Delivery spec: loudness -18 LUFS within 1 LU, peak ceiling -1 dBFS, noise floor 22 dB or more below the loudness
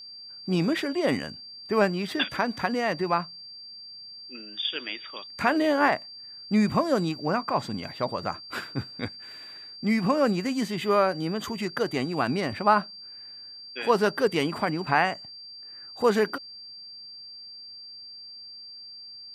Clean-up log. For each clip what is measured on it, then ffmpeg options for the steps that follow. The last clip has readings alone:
steady tone 4.7 kHz; tone level -41 dBFS; loudness -26.5 LUFS; peak level -6.5 dBFS; loudness target -18.0 LUFS
-> -af "bandreject=f=4700:w=30"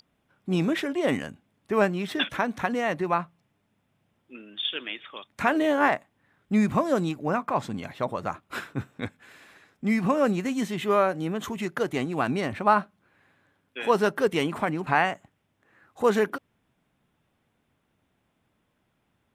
steady tone not found; loudness -26.5 LUFS; peak level -7.0 dBFS; loudness target -18.0 LUFS
-> -af "volume=2.66,alimiter=limit=0.891:level=0:latency=1"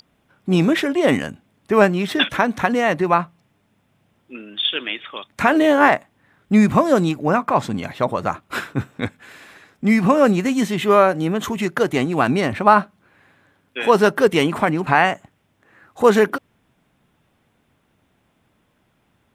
loudness -18.0 LUFS; peak level -1.0 dBFS; noise floor -65 dBFS

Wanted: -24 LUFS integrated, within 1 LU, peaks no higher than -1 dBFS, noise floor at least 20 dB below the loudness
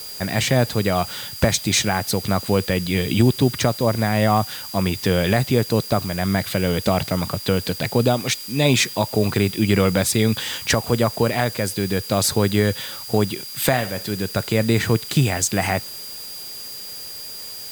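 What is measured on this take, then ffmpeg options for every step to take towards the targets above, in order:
steady tone 4.8 kHz; tone level -35 dBFS; noise floor -34 dBFS; noise floor target -41 dBFS; loudness -20.5 LUFS; peak level -5.0 dBFS; loudness target -24.0 LUFS
-> -af "bandreject=f=4800:w=30"
-af "afftdn=nr=7:nf=-34"
-af "volume=0.668"

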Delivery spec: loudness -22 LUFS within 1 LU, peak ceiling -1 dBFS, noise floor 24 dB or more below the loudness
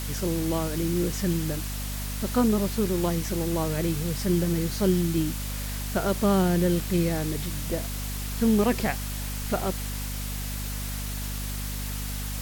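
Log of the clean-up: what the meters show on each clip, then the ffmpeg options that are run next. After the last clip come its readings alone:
hum 50 Hz; highest harmonic 250 Hz; hum level -31 dBFS; noise floor -32 dBFS; noise floor target -51 dBFS; loudness -27.0 LUFS; peak level -11.0 dBFS; loudness target -22.0 LUFS
-> -af "bandreject=f=50:t=h:w=4,bandreject=f=100:t=h:w=4,bandreject=f=150:t=h:w=4,bandreject=f=200:t=h:w=4,bandreject=f=250:t=h:w=4"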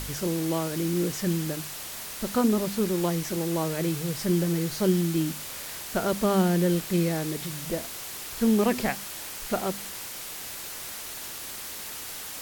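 hum not found; noise floor -38 dBFS; noise floor target -52 dBFS
-> -af "afftdn=nr=14:nf=-38"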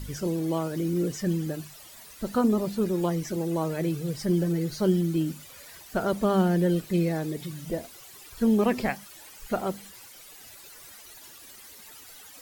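noise floor -48 dBFS; noise floor target -52 dBFS
-> -af "afftdn=nr=6:nf=-48"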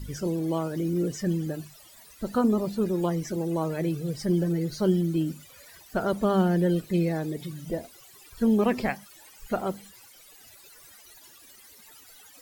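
noise floor -52 dBFS; loudness -27.5 LUFS; peak level -12.5 dBFS; loudness target -22.0 LUFS
-> -af "volume=1.88"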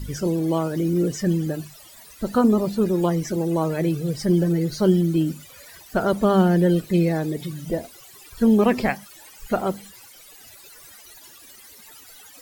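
loudness -22.0 LUFS; peak level -7.0 dBFS; noise floor -47 dBFS

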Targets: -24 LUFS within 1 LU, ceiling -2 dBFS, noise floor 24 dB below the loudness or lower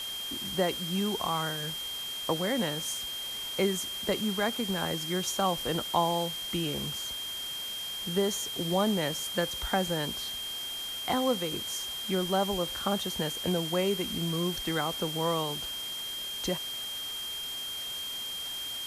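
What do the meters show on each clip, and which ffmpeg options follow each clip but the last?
steady tone 3.2 kHz; tone level -35 dBFS; noise floor -37 dBFS; noise floor target -55 dBFS; loudness -30.5 LUFS; peak level -12.5 dBFS; loudness target -24.0 LUFS
-> -af "bandreject=f=3200:w=30"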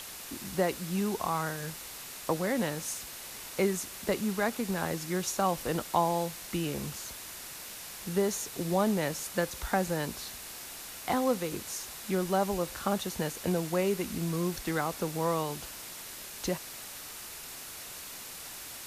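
steady tone not found; noise floor -44 dBFS; noise floor target -57 dBFS
-> -af "afftdn=nr=13:nf=-44"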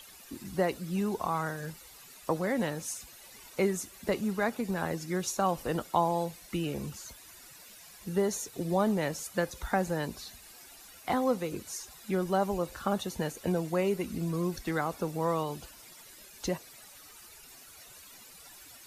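noise floor -52 dBFS; noise floor target -57 dBFS
-> -af "afftdn=nr=6:nf=-52"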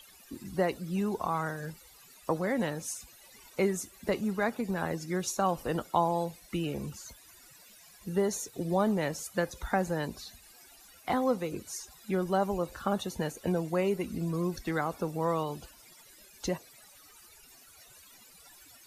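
noise floor -56 dBFS; noise floor target -57 dBFS
-> -af "afftdn=nr=6:nf=-56"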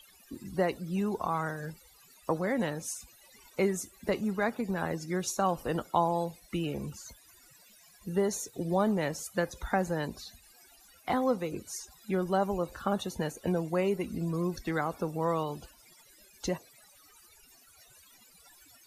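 noise floor -59 dBFS; loudness -32.5 LUFS; peak level -13.0 dBFS; loudness target -24.0 LUFS
-> -af "volume=2.66"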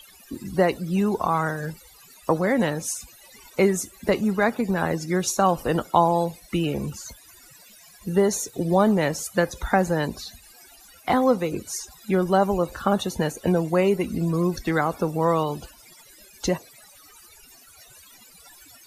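loudness -24.0 LUFS; peak level -4.5 dBFS; noise floor -51 dBFS

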